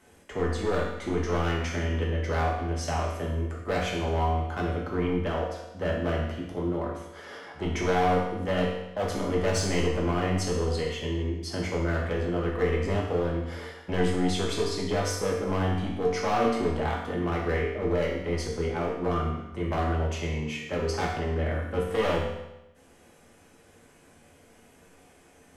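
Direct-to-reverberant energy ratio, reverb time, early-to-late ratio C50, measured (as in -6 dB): -3.5 dB, 0.95 s, 2.5 dB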